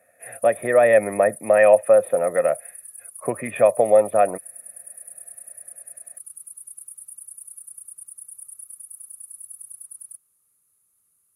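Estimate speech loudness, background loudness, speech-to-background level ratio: -18.5 LUFS, -38.0 LUFS, 19.5 dB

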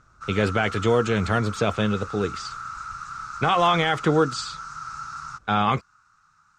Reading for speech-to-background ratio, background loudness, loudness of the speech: 12.0 dB, -35.5 LUFS, -23.5 LUFS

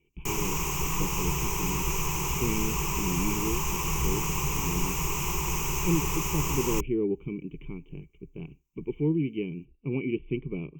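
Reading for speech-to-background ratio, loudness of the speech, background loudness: -4.5 dB, -33.5 LUFS, -29.0 LUFS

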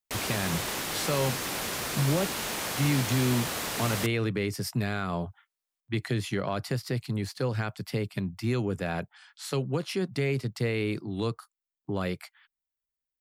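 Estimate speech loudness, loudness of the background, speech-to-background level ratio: -31.0 LUFS, -31.0 LUFS, 0.0 dB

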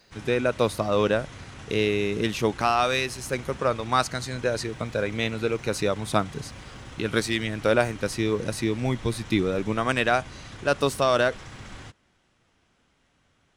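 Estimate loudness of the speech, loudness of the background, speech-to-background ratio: -25.5 LUFS, -42.5 LUFS, 17.0 dB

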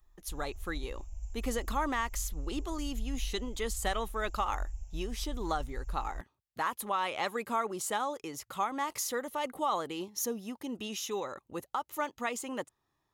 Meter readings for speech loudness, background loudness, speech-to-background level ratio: -35.5 LUFS, -44.0 LUFS, 8.5 dB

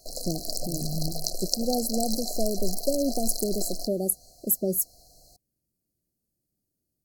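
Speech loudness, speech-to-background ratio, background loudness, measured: -29.0 LUFS, 3.0 dB, -32.0 LUFS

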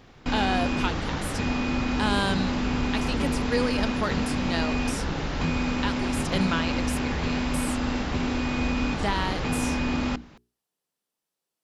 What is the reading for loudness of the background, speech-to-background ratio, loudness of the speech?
-27.5 LUFS, -4.0 dB, -31.5 LUFS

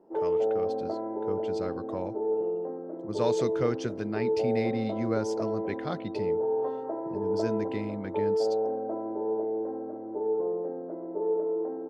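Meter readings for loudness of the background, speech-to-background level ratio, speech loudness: -31.0 LUFS, -4.0 dB, -35.0 LUFS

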